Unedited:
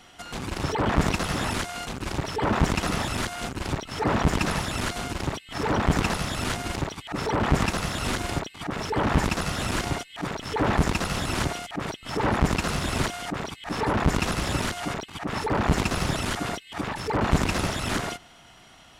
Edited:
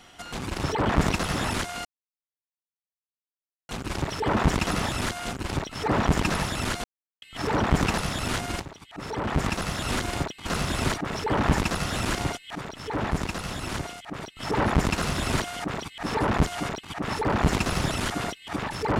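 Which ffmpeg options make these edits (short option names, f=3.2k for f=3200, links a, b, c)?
-filter_complex "[0:a]asplit=10[a][b][c][d][e][f][g][h][i][j];[a]atrim=end=1.85,asetpts=PTS-STARTPTS,afade=t=out:st=1.846:d=0.004:c=hsin,apad=pad_dur=1.84[k];[b]atrim=start=1.85:end=5,asetpts=PTS-STARTPTS,afade=t=in:d=0.004:c=hsin,afade=t=out:st=3.146:d=0.004:c=hsin[l];[c]atrim=start=5:end=5.38,asetpts=PTS-STARTPTS,volume=0[m];[d]atrim=start=5.38:end=6.78,asetpts=PTS-STARTPTS,afade=t=in:d=0.004:c=hsin,afade=t=out:st=1.396:d=0.004:c=hsin:silence=0.211349[n];[e]atrim=start=6.78:end=8.622,asetpts=PTS-STARTPTS,afade=t=in:d=1.29:silence=0.211349[o];[f]atrim=start=12.598:end=13.102[p];[g]atrim=start=8.618:end=10.212[q];[h]atrim=start=10.208:end=12.022,asetpts=PTS-STARTPTS,volume=-5dB[r];[i]atrim=start=12.018:end=14.122[s];[j]atrim=start=14.708[t];[k][l][m][n][o]concat=n=5:v=0:a=1[u];[u][p]acrossfade=d=0.004:c1=hsin:c2=hsin[v];[v][q]acrossfade=d=0.004:c1=hsin:c2=hsin[w];[w][r]acrossfade=d=0.004:c1=hsin:c2=hsin[x];[x][s]acrossfade=d=0.004:c1=hsin:c2=hsin[y];[y][t]acrossfade=d=0.004:c1=hsin:c2=hsin"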